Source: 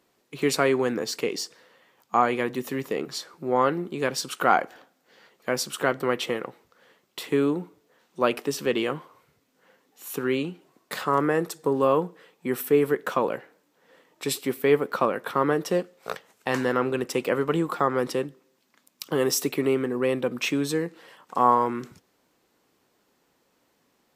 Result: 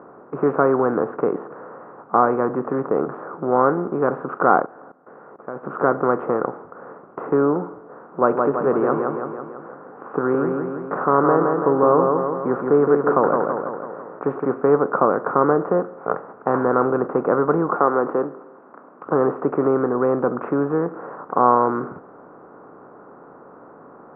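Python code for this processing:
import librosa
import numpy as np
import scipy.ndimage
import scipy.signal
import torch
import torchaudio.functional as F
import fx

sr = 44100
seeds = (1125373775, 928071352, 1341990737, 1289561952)

y = fx.level_steps(x, sr, step_db=22, at=(4.61, 5.63), fade=0.02)
y = fx.echo_feedback(y, sr, ms=166, feedback_pct=43, wet_db=-6, at=(8.28, 14.44), fade=0.02)
y = fx.highpass(y, sr, hz=280.0, slope=12, at=(17.76, 19.07))
y = fx.bin_compress(y, sr, power=0.6)
y = scipy.signal.sosfilt(scipy.signal.ellip(4, 1.0, 70, 1400.0, 'lowpass', fs=sr, output='sos'), y)
y = y * librosa.db_to_amplitude(2.5)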